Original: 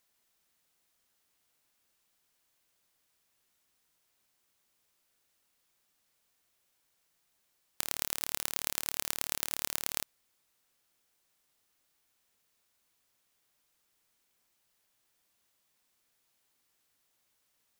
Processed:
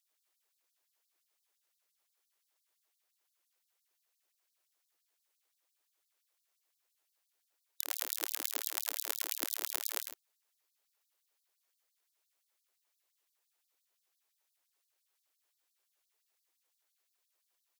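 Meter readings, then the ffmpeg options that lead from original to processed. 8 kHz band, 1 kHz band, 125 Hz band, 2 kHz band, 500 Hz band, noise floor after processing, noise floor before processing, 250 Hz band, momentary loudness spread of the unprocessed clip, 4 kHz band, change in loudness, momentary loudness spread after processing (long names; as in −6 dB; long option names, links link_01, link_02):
−2.5 dB, −3.0 dB, below −40 dB, −3.0 dB, −1.5 dB, −82 dBFS, −76 dBFS, −7.0 dB, 4 LU, −2.5 dB, −2.0 dB, 4 LU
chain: -af "equalizer=frequency=6200:width=5.2:gain=12.5,aeval=exprs='abs(val(0))':channel_layout=same,aecho=1:1:99|109:0.398|0.188,afftfilt=real='re*gte(b*sr/1024,290*pow(3900/290,0.5+0.5*sin(2*PI*5.8*pts/sr)))':imag='im*gte(b*sr/1024,290*pow(3900/290,0.5+0.5*sin(2*PI*5.8*pts/sr)))':win_size=1024:overlap=0.75,volume=-3.5dB"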